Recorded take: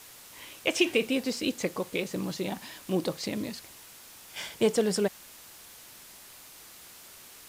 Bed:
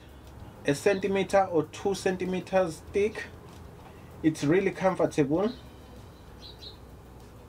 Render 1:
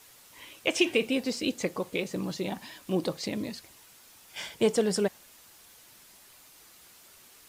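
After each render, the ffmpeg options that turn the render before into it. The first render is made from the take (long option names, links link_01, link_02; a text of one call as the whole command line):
ffmpeg -i in.wav -af "afftdn=noise_reduction=6:noise_floor=-50" out.wav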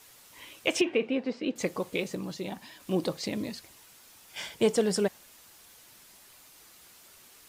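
ffmpeg -i in.wav -filter_complex "[0:a]asettb=1/sr,asplit=3[link_01][link_02][link_03];[link_01]atrim=end=0.814[link_04];[link_02]atrim=start=0.81:end=1.56,asetpts=PTS-STARTPTS,afade=type=in:duration=0.004:curve=qsin,afade=type=out:start_time=0.746:duration=0.004:curve=qsin,highpass=190,lowpass=2100[link_05];[link_03]atrim=start=1.556[link_06];[link_04][link_05]acrossfade=duration=0.004:curve1=hsin:curve2=qsin[link_07];[link_07][link_06]acrossfade=duration=0.004:curve1=qsin:curve2=hsin,asplit=3[link_08][link_09][link_10];[link_08]atrim=end=2.152[link_11];[link_09]atrim=start=2.148:end=2.802,asetpts=PTS-STARTPTS,volume=-3.5dB[link_12];[link_10]atrim=start=2.798[link_13];[link_11][link_12]acrossfade=duration=0.004:curve1=hsin:curve2=hsin[link_14];[link_14][link_13]acrossfade=duration=0.004:curve1=hsin:curve2=hsin" out.wav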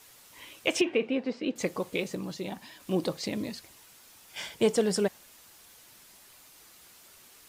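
ffmpeg -i in.wav -af anull out.wav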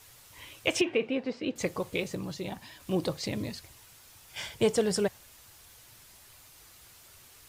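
ffmpeg -i in.wav -af "lowshelf=frequency=150:width_type=q:width=1.5:gain=8.5" out.wav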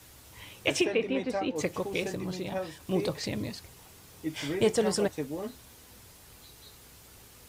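ffmpeg -i in.wav -i bed.wav -filter_complex "[1:a]volume=-10dB[link_01];[0:a][link_01]amix=inputs=2:normalize=0" out.wav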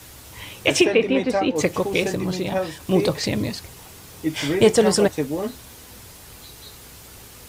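ffmpeg -i in.wav -af "volume=10dB,alimiter=limit=-2dB:level=0:latency=1" out.wav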